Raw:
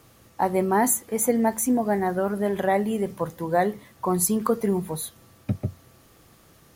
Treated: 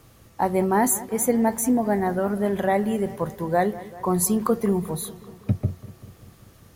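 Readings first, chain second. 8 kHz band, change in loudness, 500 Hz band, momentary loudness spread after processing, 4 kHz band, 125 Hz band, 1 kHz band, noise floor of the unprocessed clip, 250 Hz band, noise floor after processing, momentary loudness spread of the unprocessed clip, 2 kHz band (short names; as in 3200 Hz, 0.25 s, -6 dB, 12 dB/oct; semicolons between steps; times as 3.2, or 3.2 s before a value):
0.0 dB, +1.0 dB, +0.5 dB, 9 LU, 0.0 dB, +3.0 dB, +0.5 dB, -56 dBFS, +2.0 dB, -53 dBFS, 10 LU, 0.0 dB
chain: low shelf 110 Hz +8.5 dB; on a send: analogue delay 0.194 s, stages 4096, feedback 65%, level -17.5 dB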